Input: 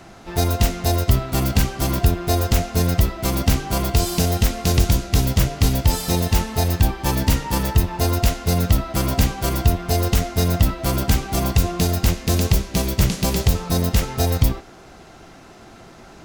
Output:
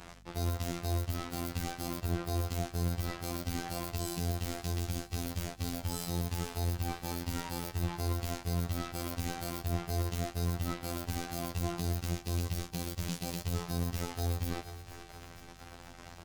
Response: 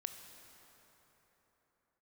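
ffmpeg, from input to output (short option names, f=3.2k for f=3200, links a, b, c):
-filter_complex "[0:a]bandreject=f=410:w=12,areverse,acompressor=threshold=-27dB:ratio=10,areverse,asplit=2[a][b];[b]adelay=22,volume=-13dB[c];[a][c]amix=inputs=2:normalize=0,acrusher=bits=5:mix=0:aa=0.5,afftfilt=real='hypot(re,im)*cos(PI*b)':imag='0':win_size=2048:overlap=0.75,aeval=exprs='val(0)+0.00158*(sin(2*PI*50*n/s)+sin(2*PI*2*50*n/s)/2+sin(2*PI*3*50*n/s)/3+sin(2*PI*4*50*n/s)/4+sin(2*PI*5*50*n/s)/5)':c=same,asplit=2[d][e];[e]aecho=0:1:467|934|1401|1868|2335|2802:0.141|0.0848|0.0509|0.0305|0.0183|0.011[f];[d][f]amix=inputs=2:normalize=0,alimiter=limit=-15dB:level=0:latency=1:release=70"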